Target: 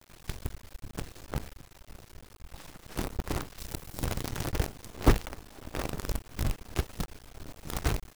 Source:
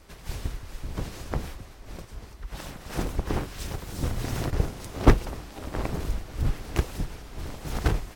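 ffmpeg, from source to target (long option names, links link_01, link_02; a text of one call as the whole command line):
ffmpeg -i in.wav -filter_complex "[0:a]acrusher=bits=5:dc=4:mix=0:aa=0.000001,asettb=1/sr,asplit=3[link_01][link_02][link_03];[link_01]atrim=end=3.584[link_04];[link_02]atrim=start=3.58:end=4.06,asetpts=PTS-STARTPTS,afade=type=in:duration=0.004:curve=qsin,afade=type=out:start_time=0.476:duration=0.004:curve=qsin,highshelf=frequency=10000:gain=7.5[link_05];[link_03]atrim=start=4.056[link_06];[link_04][link_05]acrossfade=duration=0.004:curve1=hsin:curve2=qsin[link_07];[link_07][link_06]acrossfade=duration=0.004:curve1=qsin:curve2=hsin,volume=-5dB" out.wav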